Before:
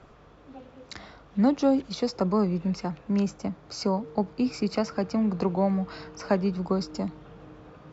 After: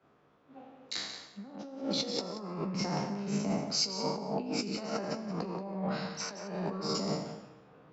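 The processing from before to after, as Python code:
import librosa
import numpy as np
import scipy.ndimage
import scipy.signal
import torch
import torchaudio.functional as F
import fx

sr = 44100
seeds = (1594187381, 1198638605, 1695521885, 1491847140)

p1 = fx.spec_trails(x, sr, decay_s=1.11)
p2 = scipy.signal.sosfilt(scipy.signal.butter(2, 150.0, 'highpass', fs=sr, output='sos'), p1)
p3 = fx.peak_eq(p2, sr, hz=4000.0, db=3.0, octaves=1.8)
p4 = fx.over_compress(p3, sr, threshold_db=-30.0, ratio=-1.0)
p5 = fx.doubler(p4, sr, ms=15.0, db=-11.0)
p6 = p5 + fx.echo_single(p5, sr, ms=181, db=-8.5, dry=0)
p7 = fx.band_widen(p6, sr, depth_pct=70)
y = F.gain(torch.from_numpy(p7), -6.5).numpy()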